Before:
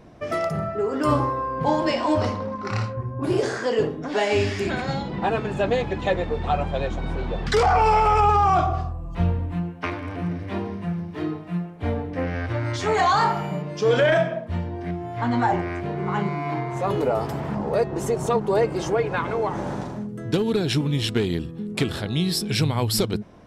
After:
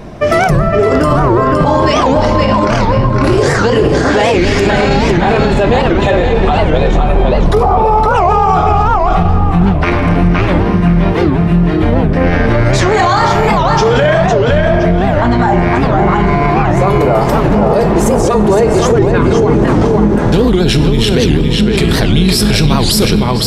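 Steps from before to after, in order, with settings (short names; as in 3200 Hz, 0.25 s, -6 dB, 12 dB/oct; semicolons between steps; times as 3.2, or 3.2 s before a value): octaver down 2 oct, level -4 dB; 6.97–8.15 spectral gain 1300–9400 Hz -14 dB; 18.93–19.68 resonant low shelf 460 Hz +9 dB, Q 1.5; in parallel at +1.5 dB: negative-ratio compressor -24 dBFS; on the sum: tape echo 0.513 s, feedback 33%, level -3 dB, low-pass 5500 Hz; on a send at -9.5 dB: reverb RT60 1.6 s, pre-delay 5 ms; on the sum: maximiser +10.5 dB; record warp 78 rpm, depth 250 cents; gain -1 dB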